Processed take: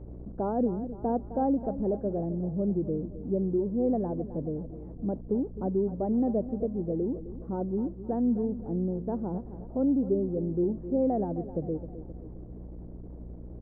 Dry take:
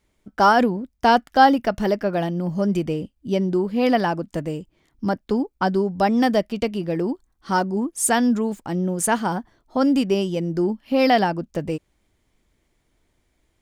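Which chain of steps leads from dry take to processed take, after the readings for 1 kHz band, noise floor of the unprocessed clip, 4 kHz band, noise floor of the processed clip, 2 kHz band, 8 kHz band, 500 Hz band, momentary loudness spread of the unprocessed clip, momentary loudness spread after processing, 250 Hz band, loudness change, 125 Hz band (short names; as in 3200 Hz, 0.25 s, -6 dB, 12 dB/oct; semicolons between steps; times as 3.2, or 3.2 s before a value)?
-17.5 dB, -69 dBFS, under -40 dB, -43 dBFS, under -35 dB, under -40 dB, -7.5 dB, 12 LU, 16 LU, -6.5 dB, -8.5 dB, -5.5 dB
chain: zero-crossing step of -30.5 dBFS; ladder low-pass 630 Hz, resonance 25%; hum 60 Hz, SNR 13 dB; on a send: feedback echo 0.261 s, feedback 48%, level -13.5 dB; on the sum: gain -3 dB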